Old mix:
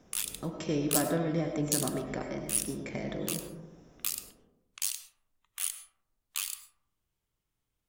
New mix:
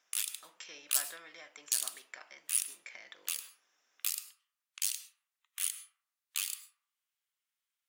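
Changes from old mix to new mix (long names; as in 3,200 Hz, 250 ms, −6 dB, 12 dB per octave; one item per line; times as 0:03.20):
speech: send off
master: add Chebyshev high-pass filter 1,700 Hz, order 2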